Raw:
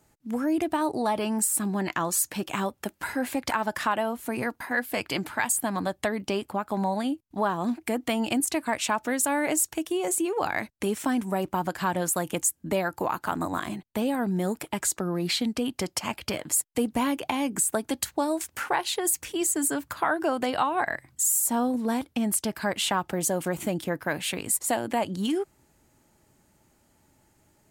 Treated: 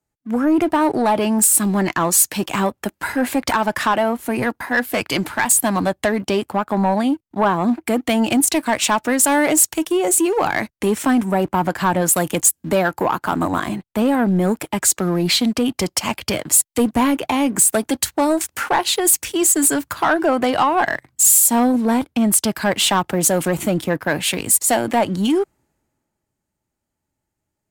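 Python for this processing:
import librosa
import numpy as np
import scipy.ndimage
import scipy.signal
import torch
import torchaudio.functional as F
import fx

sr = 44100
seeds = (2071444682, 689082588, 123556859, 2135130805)

y = fx.leveller(x, sr, passes=2)
y = fx.band_widen(y, sr, depth_pct=40)
y = F.gain(torch.from_numpy(y), 3.5).numpy()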